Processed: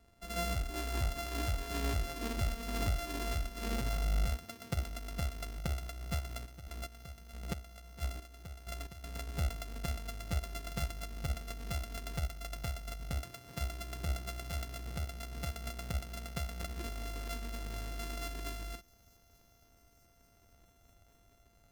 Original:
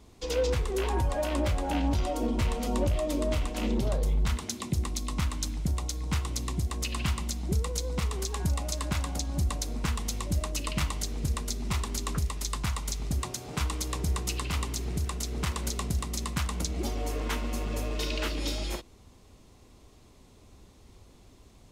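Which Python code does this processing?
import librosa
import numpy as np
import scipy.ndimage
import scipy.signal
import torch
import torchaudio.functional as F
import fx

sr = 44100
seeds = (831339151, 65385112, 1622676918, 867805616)

y = np.r_[np.sort(x[:len(x) // 64 * 64].reshape(-1, 64), axis=1).ravel(), x[len(x) // 64 * 64:]]
y = fx.dynamic_eq(y, sr, hz=690.0, q=0.73, threshold_db=-44.0, ratio=4.0, max_db=-5)
y = fx.chopper(y, sr, hz=1.5, depth_pct=65, duty_pct=30, at=(6.45, 9.03), fade=0.02)
y = fx.echo_wet_highpass(y, sr, ms=888, feedback_pct=73, hz=5600.0, wet_db=-19.0)
y = fx.upward_expand(y, sr, threshold_db=-36.0, expansion=1.5)
y = y * librosa.db_to_amplitude(-4.5)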